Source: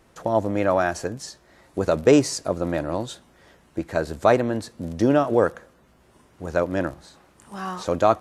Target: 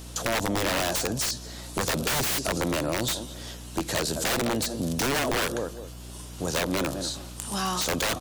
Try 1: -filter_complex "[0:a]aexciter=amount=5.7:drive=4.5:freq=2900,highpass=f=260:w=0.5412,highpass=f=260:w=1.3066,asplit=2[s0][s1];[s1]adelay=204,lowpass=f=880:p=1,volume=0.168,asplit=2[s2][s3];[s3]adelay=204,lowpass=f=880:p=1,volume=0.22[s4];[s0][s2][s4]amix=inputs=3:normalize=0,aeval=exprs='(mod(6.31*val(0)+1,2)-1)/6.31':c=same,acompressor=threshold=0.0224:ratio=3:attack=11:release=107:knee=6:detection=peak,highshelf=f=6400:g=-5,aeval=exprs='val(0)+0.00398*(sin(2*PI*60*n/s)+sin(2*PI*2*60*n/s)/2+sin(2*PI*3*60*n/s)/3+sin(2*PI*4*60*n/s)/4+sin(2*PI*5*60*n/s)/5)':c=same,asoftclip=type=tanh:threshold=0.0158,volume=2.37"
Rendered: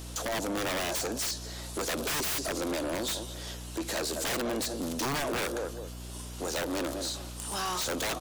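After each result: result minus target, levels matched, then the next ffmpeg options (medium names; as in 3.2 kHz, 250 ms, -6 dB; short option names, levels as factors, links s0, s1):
saturation: distortion +13 dB; 125 Hz band -3.0 dB
-filter_complex "[0:a]aexciter=amount=5.7:drive=4.5:freq=2900,highpass=f=260:w=0.5412,highpass=f=260:w=1.3066,asplit=2[s0][s1];[s1]adelay=204,lowpass=f=880:p=1,volume=0.168,asplit=2[s2][s3];[s3]adelay=204,lowpass=f=880:p=1,volume=0.22[s4];[s0][s2][s4]amix=inputs=3:normalize=0,aeval=exprs='(mod(6.31*val(0)+1,2)-1)/6.31':c=same,acompressor=threshold=0.0224:ratio=3:attack=11:release=107:knee=6:detection=peak,highshelf=f=6400:g=-5,aeval=exprs='val(0)+0.00398*(sin(2*PI*60*n/s)+sin(2*PI*2*60*n/s)/2+sin(2*PI*3*60*n/s)/3+sin(2*PI*4*60*n/s)/4+sin(2*PI*5*60*n/s)/5)':c=same,asoftclip=type=tanh:threshold=0.0562,volume=2.37"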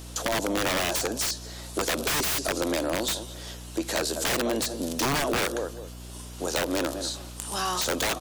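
125 Hz band -4.5 dB
-filter_complex "[0:a]aexciter=amount=5.7:drive=4.5:freq=2900,highpass=f=98:w=0.5412,highpass=f=98:w=1.3066,asplit=2[s0][s1];[s1]adelay=204,lowpass=f=880:p=1,volume=0.168,asplit=2[s2][s3];[s3]adelay=204,lowpass=f=880:p=1,volume=0.22[s4];[s0][s2][s4]amix=inputs=3:normalize=0,aeval=exprs='(mod(6.31*val(0)+1,2)-1)/6.31':c=same,acompressor=threshold=0.0224:ratio=3:attack=11:release=107:knee=6:detection=peak,highshelf=f=6400:g=-5,aeval=exprs='val(0)+0.00398*(sin(2*PI*60*n/s)+sin(2*PI*2*60*n/s)/2+sin(2*PI*3*60*n/s)/3+sin(2*PI*4*60*n/s)/4+sin(2*PI*5*60*n/s)/5)':c=same,asoftclip=type=tanh:threshold=0.0562,volume=2.37"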